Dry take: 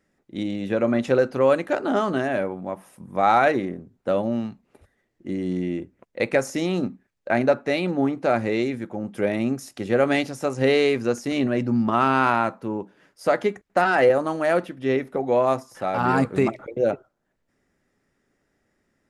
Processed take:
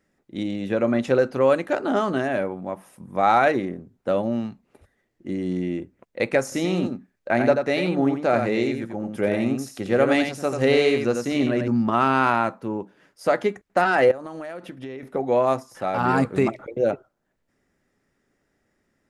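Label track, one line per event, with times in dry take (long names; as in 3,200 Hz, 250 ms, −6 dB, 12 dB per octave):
6.430000	11.680000	single-tap delay 88 ms −6 dB
14.110000	15.030000	downward compressor 20 to 1, threshold −30 dBFS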